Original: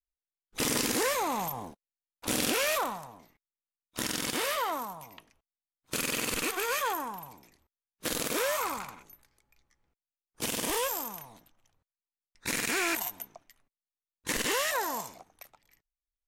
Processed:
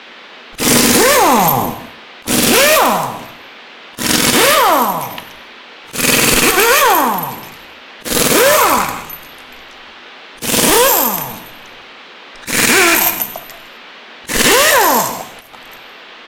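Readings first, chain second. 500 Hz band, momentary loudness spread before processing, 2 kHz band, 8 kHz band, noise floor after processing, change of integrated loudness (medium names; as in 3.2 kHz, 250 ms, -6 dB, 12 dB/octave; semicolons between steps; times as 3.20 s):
+20.0 dB, 17 LU, +19.5 dB, +19.5 dB, -37 dBFS, +20.0 dB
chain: in parallel at -4 dB: wavefolder -28 dBFS; on the sum: band noise 220–3500 Hz -55 dBFS; slow attack 167 ms; on a send: delay 160 ms -17 dB; on the sum: gated-style reverb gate 290 ms falling, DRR 8 dB; loudness maximiser +19 dB; trim -1 dB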